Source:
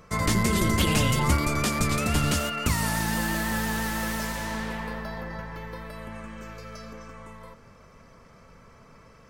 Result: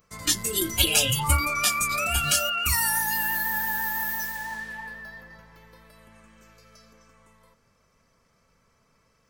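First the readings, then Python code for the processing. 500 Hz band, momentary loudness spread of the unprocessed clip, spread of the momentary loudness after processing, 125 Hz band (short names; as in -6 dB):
-4.5 dB, 18 LU, 14 LU, -6.5 dB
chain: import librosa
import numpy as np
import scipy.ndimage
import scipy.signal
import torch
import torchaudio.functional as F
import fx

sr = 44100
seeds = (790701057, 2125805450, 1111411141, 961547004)

y = fx.noise_reduce_blind(x, sr, reduce_db=17)
y = fx.high_shelf(y, sr, hz=3200.0, db=11.5)
y = F.gain(torch.from_numpy(y), 2.0).numpy()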